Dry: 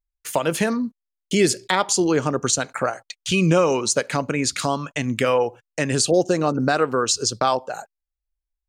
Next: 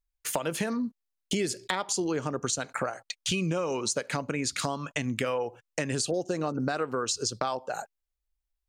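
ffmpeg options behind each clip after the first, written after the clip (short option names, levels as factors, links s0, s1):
-af "acompressor=threshold=0.0447:ratio=5"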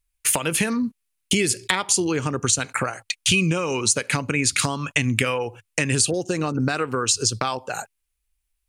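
-af "equalizer=f=100:t=o:w=0.67:g=9,equalizer=f=630:t=o:w=0.67:g=-6,equalizer=f=2500:t=o:w=0.67:g=7,equalizer=f=10000:t=o:w=0.67:g=10,volume=2.11"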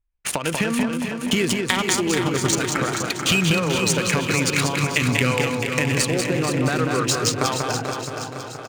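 -filter_complex "[0:a]asplit=2[s0][s1];[s1]aecho=0:1:190|437|758.1|1176|1718:0.631|0.398|0.251|0.158|0.1[s2];[s0][s2]amix=inputs=2:normalize=0,adynamicsmooth=sensitivity=2.5:basefreq=1500,asplit=2[s3][s4];[s4]aecho=0:1:473|946|1419|1892|2365|2838:0.376|0.203|0.11|0.0592|0.032|0.0173[s5];[s3][s5]amix=inputs=2:normalize=0"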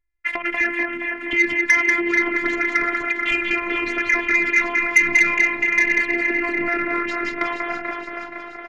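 -af "lowpass=f=2000:t=q:w=13,afftfilt=real='hypot(re,im)*cos(PI*b)':imag='0':win_size=512:overlap=0.75,asoftclip=type=tanh:threshold=0.447"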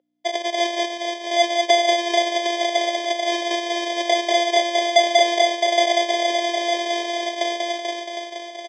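-af "acrusher=samples=32:mix=1:aa=0.000001,aeval=exprs='val(0)+0.00501*(sin(2*PI*60*n/s)+sin(2*PI*2*60*n/s)/2+sin(2*PI*3*60*n/s)/3+sin(2*PI*4*60*n/s)/4+sin(2*PI*5*60*n/s)/5)':c=same,highpass=f=420:w=0.5412,highpass=f=420:w=1.3066,equalizer=f=530:t=q:w=4:g=9,equalizer=f=1100:t=q:w=4:g=-8,equalizer=f=3200:t=q:w=4:g=8,equalizer=f=5500:t=q:w=4:g=4,lowpass=f=6700:w=0.5412,lowpass=f=6700:w=1.3066,volume=0.708"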